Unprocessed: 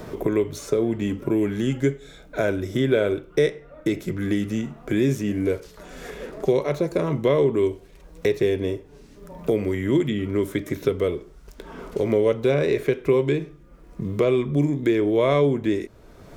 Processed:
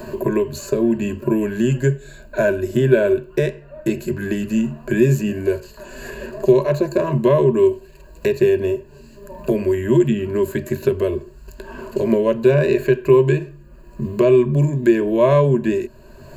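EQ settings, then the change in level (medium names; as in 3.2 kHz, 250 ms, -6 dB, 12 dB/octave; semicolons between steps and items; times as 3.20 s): rippled EQ curve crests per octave 1.4, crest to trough 16 dB; +1.5 dB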